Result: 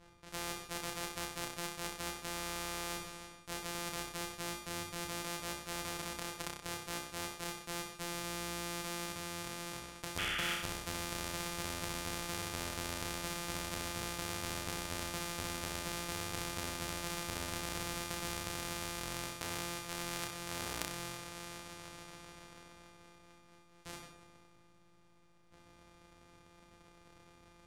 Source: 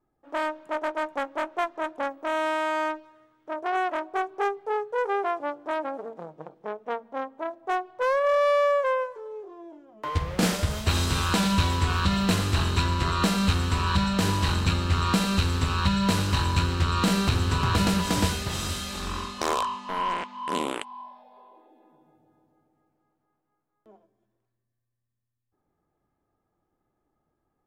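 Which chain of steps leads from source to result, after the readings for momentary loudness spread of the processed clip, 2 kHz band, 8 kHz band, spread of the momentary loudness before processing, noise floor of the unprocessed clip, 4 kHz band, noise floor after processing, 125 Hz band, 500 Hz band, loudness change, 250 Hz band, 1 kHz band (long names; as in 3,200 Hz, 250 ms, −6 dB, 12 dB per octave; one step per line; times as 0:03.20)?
8 LU, −10.0 dB, −4.0 dB, 12 LU, −79 dBFS, −9.5 dB, −63 dBFS, −20.0 dB, −17.5 dB, −14.0 dB, −16.5 dB, −16.0 dB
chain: samples sorted by size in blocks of 256 samples
low-pass filter 10,000 Hz 12 dB per octave
reversed playback
downward compressor 4 to 1, threshold −41 dBFS, peak gain reduction 19 dB
reversed playback
sound drawn into the spectrogram noise, 0:10.18–0:10.54, 1,200–3,500 Hz −35 dBFS
on a send: flutter between parallel walls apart 5.4 metres, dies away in 0.44 s
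on the sum: every bin compressed towards the loudest bin 2 to 1
level +6 dB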